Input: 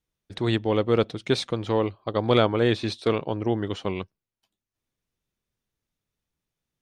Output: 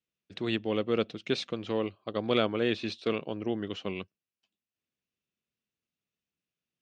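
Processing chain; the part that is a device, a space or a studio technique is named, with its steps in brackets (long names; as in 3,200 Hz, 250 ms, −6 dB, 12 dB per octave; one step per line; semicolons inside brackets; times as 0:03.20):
car door speaker (loudspeaker in its box 110–7,000 Hz, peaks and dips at 120 Hz −5 dB, 210 Hz +3 dB, 890 Hz −7 dB, 2,700 Hz +8 dB)
level −6.5 dB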